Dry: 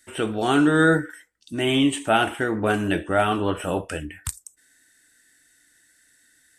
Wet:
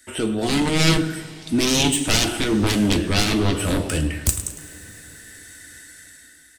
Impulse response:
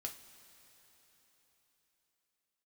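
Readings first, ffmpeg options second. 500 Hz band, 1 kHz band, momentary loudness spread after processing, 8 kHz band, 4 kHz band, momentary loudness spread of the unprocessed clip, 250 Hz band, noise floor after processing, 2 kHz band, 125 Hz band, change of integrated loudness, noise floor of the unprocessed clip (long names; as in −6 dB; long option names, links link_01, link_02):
−2.0 dB, −4.5 dB, 22 LU, +12.5 dB, +8.0 dB, 15 LU, +2.0 dB, −49 dBFS, −1.0 dB, +6.5 dB, +2.0 dB, −61 dBFS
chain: -filter_complex "[0:a]dynaudnorm=framelen=300:gausssize=5:maxgain=10.5dB,aecho=1:1:106|212|318:0.178|0.064|0.023,aeval=exprs='0.891*(cos(1*acos(clip(val(0)/0.891,-1,1)))-cos(1*PI/2))+0.447*(cos(7*acos(clip(val(0)/0.891,-1,1)))-cos(7*PI/2))':channel_layout=same,acrossover=split=400|3000[link_01][link_02][link_03];[link_02]acompressor=threshold=-39dB:ratio=2[link_04];[link_01][link_04][link_03]amix=inputs=3:normalize=0,asplit=2[link_05][link_06];[1:a]atrim=start_sample=2205[link_07];[link_06][link_07]afir=irnorm=-1:irlink=0,volume=4.5dB[link_08];[link_05][link_08]amix=inputs=2:normalize=0,volume=-8dB"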